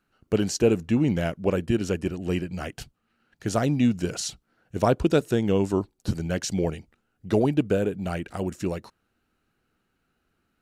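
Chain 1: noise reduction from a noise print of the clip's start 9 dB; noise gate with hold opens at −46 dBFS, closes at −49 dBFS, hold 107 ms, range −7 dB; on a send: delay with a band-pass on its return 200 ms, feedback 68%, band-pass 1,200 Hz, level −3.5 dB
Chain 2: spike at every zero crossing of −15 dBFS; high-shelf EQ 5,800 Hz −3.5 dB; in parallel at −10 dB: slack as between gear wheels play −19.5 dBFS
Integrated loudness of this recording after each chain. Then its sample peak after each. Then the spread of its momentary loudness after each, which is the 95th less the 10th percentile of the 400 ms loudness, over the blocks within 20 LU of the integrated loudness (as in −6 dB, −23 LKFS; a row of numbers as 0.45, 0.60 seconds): −26.5, −22.0 LKFS; −7.5, −5.5 dBFS; 19, 6 LU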